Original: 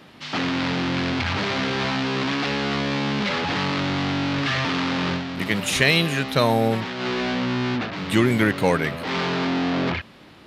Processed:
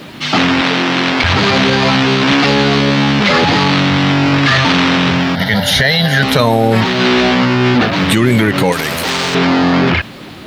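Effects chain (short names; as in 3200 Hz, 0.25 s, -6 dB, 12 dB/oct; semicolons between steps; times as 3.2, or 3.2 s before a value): bin magnitudes rounded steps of 15 dB; 0.61–1.24 HPF 260 Hz 12 dB/oct; 5.35–6.23 fixed phaser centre 1700 Hz, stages 8; bit-crush 11-bit; maximiser +17.5 dB; 8.72–9.35 spectral compressor 2:1; gain -1 dB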